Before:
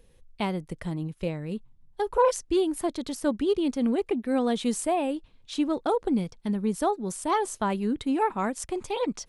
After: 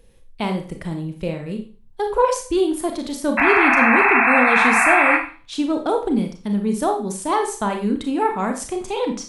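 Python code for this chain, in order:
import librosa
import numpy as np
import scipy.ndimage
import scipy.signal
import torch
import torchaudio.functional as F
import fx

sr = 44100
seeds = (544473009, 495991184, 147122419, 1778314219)

y = fx.spec_paint(x, sr, seeds[0], shape='noise', start_s=3.37, length_s=1.8, low_hz=660.0, high_hz=2700.0, level_db=-21.0)
y = fx.rev_schroeder(y, sr, rt60_s=0.38, comb_ms=28, drr_db=4.0)
y = F.gain(torch.from_numpy(y), 4.0).numpy()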